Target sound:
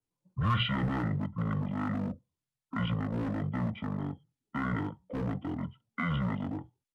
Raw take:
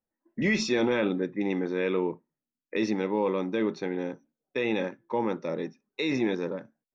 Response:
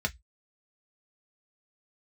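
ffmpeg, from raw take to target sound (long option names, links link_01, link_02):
-filter_complex "[0:a]adynamicequalizer=threshold=0.00112:dfrequency=6200:dqfactor=4.3:tfrequency=6200:tqfactor=4.3:attack=5:release=100:ratio=0.375:range=2:mode=boostabove:tftype=bell,asetrate=24046,aresample=44100,atempo=1.83401,acrossover=split=130|1100[link_01][link_02][link_03];[link_02]asoftclip=type=hard:threshold=-33.5dB[link_04];[link_01][link_04][link_03]amix=inputs=3:normalize=0"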